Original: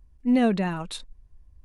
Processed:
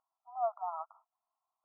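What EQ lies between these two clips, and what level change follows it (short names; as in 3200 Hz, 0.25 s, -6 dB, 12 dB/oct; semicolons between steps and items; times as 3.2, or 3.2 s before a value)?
brick-wall FIR band-pass 640–1400 Hz; -2.5 dB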